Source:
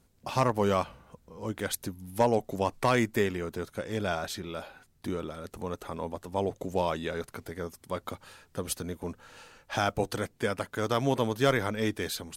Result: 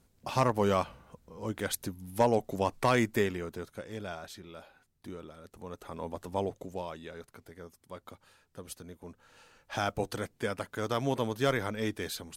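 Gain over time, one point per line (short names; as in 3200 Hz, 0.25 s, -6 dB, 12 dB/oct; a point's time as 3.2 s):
3.17 s -1 dB
4.17 s -10 dB
5.53 s -10 dB
6.28 s 0 dB
6.87 s -11 dB
9.02 s -11 dB
9.83 s -3.5 dB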